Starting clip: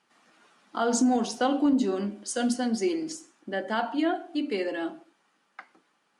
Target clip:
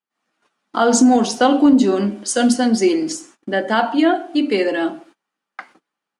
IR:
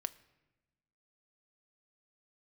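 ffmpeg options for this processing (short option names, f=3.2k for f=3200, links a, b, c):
-af "agate=range=-23dB:threshold=-56dB:ratio=16:detection=peak,dynaudnorm=f=110:g=3:m=11.5dB"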